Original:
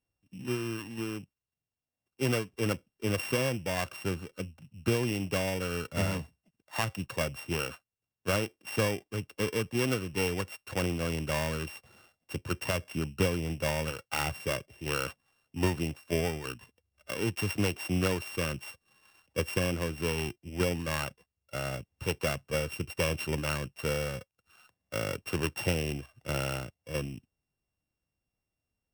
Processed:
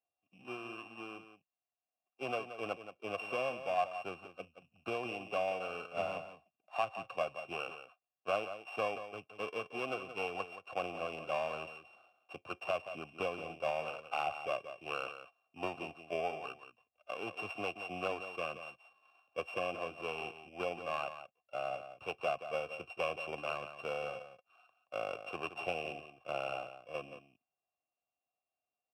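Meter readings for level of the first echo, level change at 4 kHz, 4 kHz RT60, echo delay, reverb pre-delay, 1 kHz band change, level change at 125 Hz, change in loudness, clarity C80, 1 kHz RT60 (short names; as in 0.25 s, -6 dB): -11.0 dB, -9.5 dB, none, 0.176 s, none, +0.5 dB, -22.5 dB, -7.0 dB, none, none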